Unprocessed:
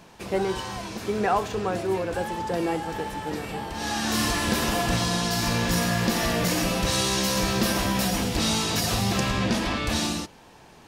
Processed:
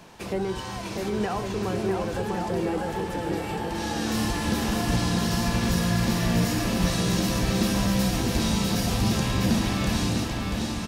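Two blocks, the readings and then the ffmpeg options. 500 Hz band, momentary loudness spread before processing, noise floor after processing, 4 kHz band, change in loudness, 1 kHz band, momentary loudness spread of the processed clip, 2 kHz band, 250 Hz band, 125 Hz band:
-1.5 dB, 8 LU, -34 dBFS, -3.5 dB, -0.5 dB, -3.0 dB, 6 LU, -3.0 dB, +2.0 dB, +3.0 dB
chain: -filter_complex "[0:a]acrossover=split=310[s0][s1];[s1]acompressor=threshold=0.0178:ratio=2.5[s2];[s0][s2]amix=inputs=2:normalize=0,aecho=1:1:650|1105|1424|1646|1803:0.631|0.398|0.251|0.158|0.1,volume=1.19"

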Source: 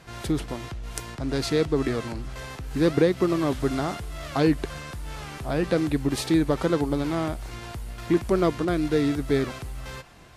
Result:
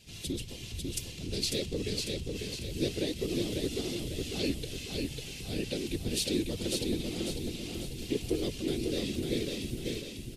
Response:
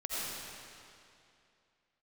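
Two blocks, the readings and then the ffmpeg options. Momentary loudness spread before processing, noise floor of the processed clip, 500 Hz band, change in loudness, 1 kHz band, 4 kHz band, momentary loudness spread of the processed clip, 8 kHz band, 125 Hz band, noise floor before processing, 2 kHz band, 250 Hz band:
15 LU, -43 dBFS, -10.0 dB, -8.5 dB, -21.0 dB, +2.0 dB, 6 LU, +1.5 dB, -8.0 dB, -40 dBFS, -8.5 dB, -9.5 dB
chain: -filter_complex "[0:a]firequalizer=gain_entry='entry(110,0);entry(180,-9);entry(380,-3);entry(580,-14);entry(1200,-23);entry(2700,6)':delay=0.05:min_phase=1,afftfilt=real='hypot(re,im)*cos(2*PI*random(0))':imag='hypot(re,im)*sin(2*PI*random(1))':win_size=512:overlap=0.75,asplit=2[s0][s1];[s1]aecho=0:1:547|1094|1641|2188|2735|3282:0.668|0.294|0.129|0.0569|0.0251|0.011[s2];[s0][s2]amix=inputs=2:normalize=0"

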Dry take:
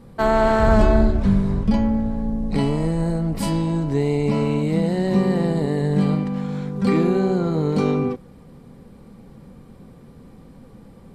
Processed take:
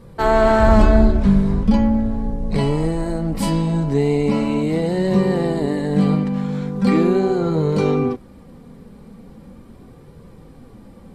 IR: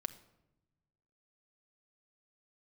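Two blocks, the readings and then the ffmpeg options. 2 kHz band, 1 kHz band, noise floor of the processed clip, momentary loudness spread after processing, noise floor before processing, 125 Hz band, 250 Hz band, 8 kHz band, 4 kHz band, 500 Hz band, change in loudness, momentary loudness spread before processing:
+2.5 dB, +2.5 dB, -44 dBFS, 9 LU, -46 dBFS, +1.0 dB, +2.5 dB, +2.5 dB, +2.5 dB, +2.5 dB, +2.5 dB, 7 LU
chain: -af "flanger=delay=1.8:depth=3.1:regen=-49:speed=0.39:shape=triangular,volume=2.11"

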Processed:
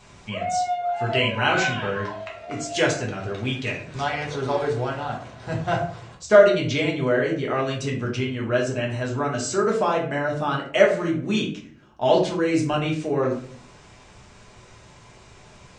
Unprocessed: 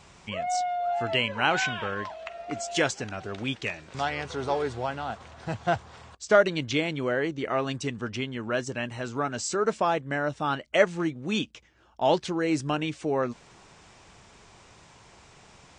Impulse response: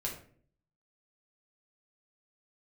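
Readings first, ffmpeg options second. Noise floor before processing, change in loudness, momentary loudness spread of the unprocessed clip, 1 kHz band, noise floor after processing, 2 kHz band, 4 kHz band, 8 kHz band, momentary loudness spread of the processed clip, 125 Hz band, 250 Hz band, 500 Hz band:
-54 dBFS, +5.0 dB, 10 LU, +3.0 dB, -49 dBFS, +3.5 dB, +3.0 dB, +2.5 dB, 12 LU, +7.5 dB, +5.0 dB, +6.0 dB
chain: -filter_complex "[1:a]atrim=start_sample=2205[s0];[0:a][s0]afir=irnorm=-1:irlink=0,volume=1.26"

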